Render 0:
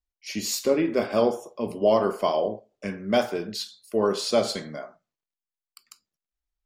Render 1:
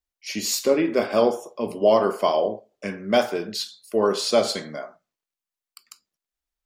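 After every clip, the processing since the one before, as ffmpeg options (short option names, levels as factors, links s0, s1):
-af "lowshelf=f=160:g=-8.5,volume=1.5"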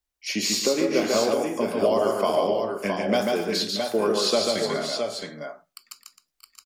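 -filter_complex "[0:a]acrossover=split=140|6500[s0][s1][s2];[s0]acompressor=threshold=0.00282:ratio=4[s3];[s1]acompressor=threshold=0.0631:ratio=4[s4];[s2]acompressor=threshold=0.00794:ratio=4[s5];[s3][s4][s5]amix=inputs=3:normalize=0,asplit=2[s6][s7];[s7]aecho=0:1:142|160|261|633|661|668:0.668|0.126|0.211|0.126|0.2|0.501[s8];[s6][s8]amix=inputs=2:normalize=0,volume=1.41"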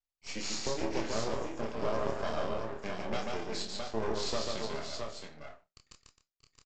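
-filter_complex "[0:a]aresample=16000,aeval=exprs='max(val(0),0)':c=same,aresample=44100,asplit=2[s0][s1];[s1]adelay=27,volume=0.562[s2];[s0][s2]amix=inputs=2:normalize=0,volume=0.355"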